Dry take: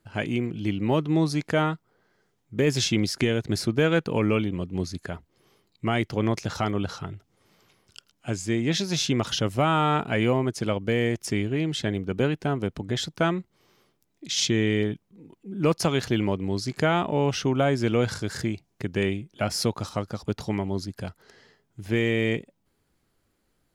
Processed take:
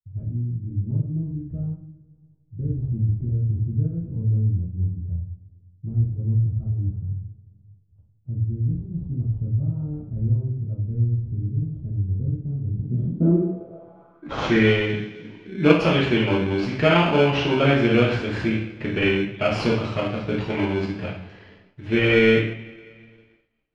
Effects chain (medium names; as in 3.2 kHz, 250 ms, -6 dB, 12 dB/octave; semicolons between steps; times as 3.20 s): two-slope reverb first 0.59 s, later 2.4 s, from -21 dB, DRR -6.5 dB; expander -50 dBFS; in parallel at -4 dB: sample-rate reducer 1.9 kHz, jitter 0%; on the sum: low-pass sweep 100 Hz -> 2.7 kHz, 12.67–14.71 s; trim -5.5 dB